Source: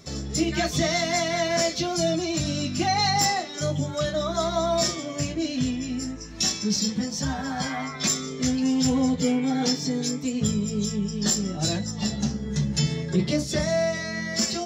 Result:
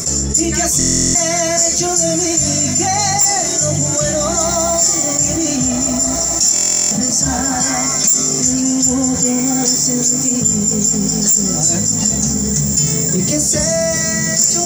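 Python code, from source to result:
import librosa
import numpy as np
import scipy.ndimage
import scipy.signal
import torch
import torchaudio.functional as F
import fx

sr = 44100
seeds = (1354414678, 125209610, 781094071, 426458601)

p1 = fx.high_shelf_res(x, sr, hz=5400.0, db=12.5, q=3.0)
p2 = 10.0 ** (-2.5 / 20.0) * (np.abs((p1 / 10.0 ** (-2.5 / 20.0) + 3.0) % 4.0 - 2.0) - 1.0)
p3 = p2 + fx.echo_diffused(p2, sr, ms=1598, feedback_pct=56, wet_db=-11.5, dry=0)
p4 = fx.buffer_glitch(p3, sr, at_s=(0.78, 6.54), block=1024, repeats=15)
p5 = fx.env_flatten(p4, sr, amount_pct=70)
y = p5 * librosa.db_to_amplitude(-4.5)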